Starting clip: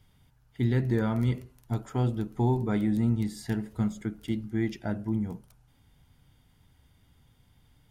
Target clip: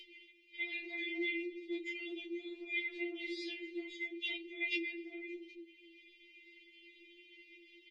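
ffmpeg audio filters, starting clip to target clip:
-filter_complex "[0:a]asuperstop=centerf=930:order=20:qfactor=0.54,alimiter=level_in=1.26:limit=0.0631:level=0:latency=1:release=19,volume=0.794,highpass=110,equalizer=f=260:t=q:w=4:g=-7,equalizer=f=630:t=q:w=4:g=6,equalizer=f=970:t=q:w=4:g=-8,equalizer=f=2200:t=q:w=4:g=10,lowpass=f=3100:w=0.5412,lowpass=f=3100:w=1.3066,asplit=2[s0][s1];[s1]adelay=253,lowpass=f=1200:p=1,volume=0.158,asplit=2[s2][s3];[s3]adelay=253,lowpass=f=1200:p=1,volume=0.27,asplit=2[s4][s5];[s5]adelay=253,lowpass=f=1200:p=1,volume=0.27[s6];[s0][s2][s4][s6]amix=inputs=4:normalize=0,acompressor=mode=upward:threshold=0.00141:ratio=2.5,flanger=delay=19:depth=7.8:speed=1.1,afftfilt=real='re*lt(hypot(re,im),0.0251)':imag='im*lt(hypot(re,im),0.0251)':win_size=1024:overlap=0.75,highshelf=f=2000:g=7,bandreject=f=409:t=h:w=4,bandreject=f=818:t=h:w=4,bandreject=f=1227:t=h:w=4,bandreject=f=1636:t=h:w=4,bandreject=f=2045:t=h:w=4,bandreject=f=2454:t=h:w=4,bandreject=f=2863:t=h:w=4,bandreject=f=3272:t=h:w=4,bandreject=f=3681:t=h:w=4,bandreject=f=4090:t=h:w=4,bandreject=f=4499:t=h:w=4,afftfilt=real='re*4*eq(mod(b,16),0)':imag='im*4*eq(mod(b,16),0)':win_size=2048:overlap=0.75,volume=5.01"

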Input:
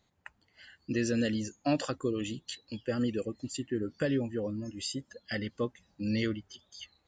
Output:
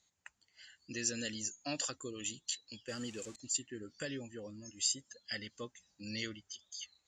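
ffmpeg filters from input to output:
-filter_complex "[0:a]asettb=1/sr,asplit=3[s0][s1][s2];[s0]atrim=end=2.884[s3];[s1]atrim=start=2.88:end=3.36,asetpts=PTS-STARTPTS,afade=t=in:d=0.004:c=qsin,afade=t=out:st=0.476:d=0.004:c=qsin,aeval=exprs='val(0)+0.5*0.00631*sgn(val(0))':c=same[s4];[s2]atrim=start=3.356[s5];[s3][s4]acrossfade=d=0.004:c1=hsin:c2=qsin[s6];[s6][s5]acrossfade=d=0.004:c1=qsin:c2=hsin,lowpass=f=7200:t=q:w=3.5,tiltshelf=f=1400:g=-6.5,volume=0.422"

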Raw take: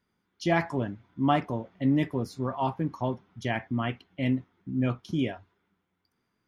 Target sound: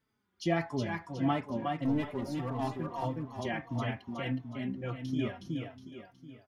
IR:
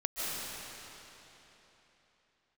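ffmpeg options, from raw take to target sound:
-filter_complex "[0:a]asplit=2[s0][s1];[s1]acompressor=threshold=0.0224:ratio=6,volume=0.891[s2];[s0][s2]amix=inputs=2:normalize=0,asettb=1/sr,asplit=3[s3][s4][s5];[s3]atrim=end=1.704[s6];[s4]atrim=start=1.7:end=2.71,asetpts=PTS-STARTPTS,afade=t=in:d=0.004:c=qsin,afade=t=out:st=1.006:d=0.004:c=qsin,aeval=exprs='clip(val(0),-1,0.0944)':c=same[s7];[s5]atrim=start=2.706[s8];[s6][s7]acrossfade=d=0.004:c1=hsin:c2=qsin[s9];[s9][s8]acrossfade=d=0.004:c1=qsin:c2=hsin,aecho=1:1:366|732|1098|1464|1830:0.631|0.271|0.117|0.0502|0.0216,asplit=2[s10][s11];[s11]adelay=4,afreqshift=-1.6[s12];[s10][s12]amix=inputs=2:normalize=1,volume=0.531"

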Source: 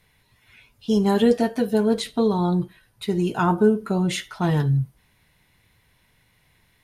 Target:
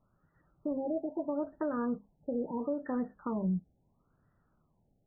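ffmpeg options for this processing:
-af "bandreject=f=50:t=h:w=6,bandreject=f=100:t=h:w=6,bandreject=f=150:t=h:w=6,bandreject=f=200:t=h:w=6,alimiter=limit=0.126:level=0:latency=1:release=355,asetrate=59535,aresample=44100,afftfilt=real='re*lt(b*sr/1024,840*pow(2000/840,0.5+0.5*sin(2*PI*0.75*pts/sr)))':imag='im*lt(b*sr/1024,840*pow(2000/840,0.5+0.5*sin(2*PI*0.75*pts/sr)))':win_size=1024:overlap=0.75,volume=0.447"

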